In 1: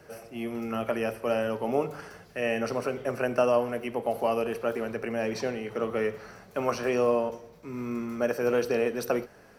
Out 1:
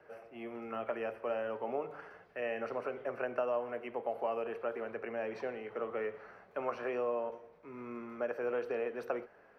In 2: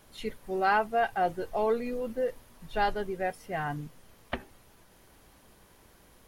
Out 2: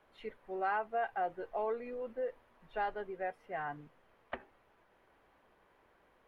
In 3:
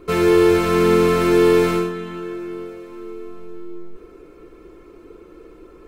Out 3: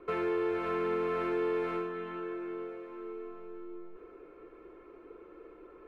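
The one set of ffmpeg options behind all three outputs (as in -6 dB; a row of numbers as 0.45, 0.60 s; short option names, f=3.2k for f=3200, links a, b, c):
-filter_complex "[0:a]acompressor=threshold=-25dB:ratio=2.5,acrossover=split=350 2700:gain=0.251 1 0.0708[a][b][c];[a][b][c]amix=inputs=3:normalize=0,volume=-5dB"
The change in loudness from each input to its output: -9.0, -8.0, -18.0 LU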